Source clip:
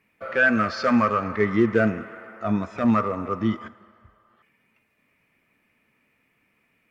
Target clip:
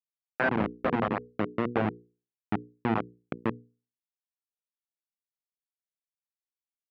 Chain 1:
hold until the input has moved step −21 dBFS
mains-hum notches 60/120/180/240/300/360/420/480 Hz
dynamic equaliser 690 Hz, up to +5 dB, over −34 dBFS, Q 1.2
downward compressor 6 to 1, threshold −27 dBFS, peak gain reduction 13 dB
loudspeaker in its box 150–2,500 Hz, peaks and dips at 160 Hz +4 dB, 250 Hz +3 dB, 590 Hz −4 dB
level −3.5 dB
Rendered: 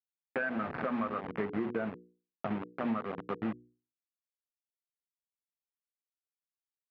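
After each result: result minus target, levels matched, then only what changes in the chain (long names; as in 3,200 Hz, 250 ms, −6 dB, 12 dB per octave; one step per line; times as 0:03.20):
hold until the input has moved: distortion −16 dB; downward compressor: peak gain reduction +8.5 dB
change: hold until the input has moved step −11 dBFS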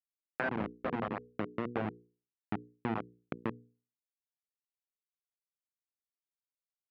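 downward compressor: peak gain reduction +8 dB
change: downward compressor 6 to 1, threshold −17.5 dBFS, peak gain reduction 4.5 dB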